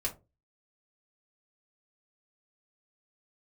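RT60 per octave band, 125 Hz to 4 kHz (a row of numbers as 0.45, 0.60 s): 0.45, 0.35, 0.30, 0.20, 0.15, 0.15 s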